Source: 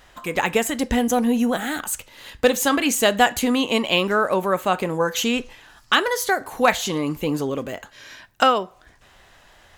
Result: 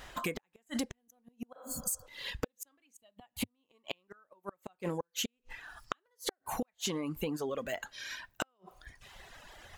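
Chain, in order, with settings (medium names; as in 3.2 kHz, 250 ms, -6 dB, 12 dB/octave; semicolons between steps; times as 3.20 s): inverted gate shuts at -12 dBFS, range -42 dB; 2.97–3.65 s: fifteen-band graphic EQ 100 Hz +8 dB, 400 Hz -6 dB, 1.6 kHz -9 dB, 6.3 kHz -11 dB; reverb removal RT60 1.6 s; 1.58–2.04 s: spectral replace 270–4300 Hz before; compression 10:1, threshold -34 dBFS, peak gain reduction 16 dB; trim +2 dB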